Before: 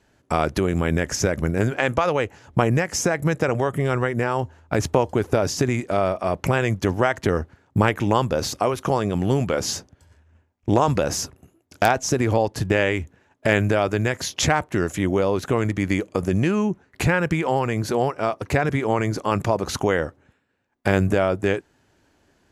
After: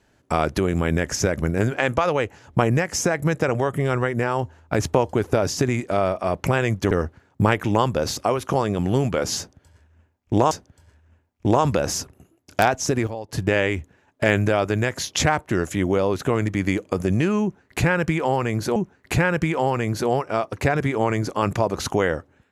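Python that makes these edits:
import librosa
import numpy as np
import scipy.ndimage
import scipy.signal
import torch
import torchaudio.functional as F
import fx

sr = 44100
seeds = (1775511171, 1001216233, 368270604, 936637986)

y = fx.edit(x, sr, fx.cut(start_s=6.91, length_s=0.36),
    fx.repeat(start_s=9.74, length_s=1.13, count=2),
    fx.fade_down_up(start_s=11.84, length_s=1.14, db=-12.0, fade_s=0.46, curve='log'),
    fx.repeat(start_s=16.65, length_s=1.34, count=2), tone=tone)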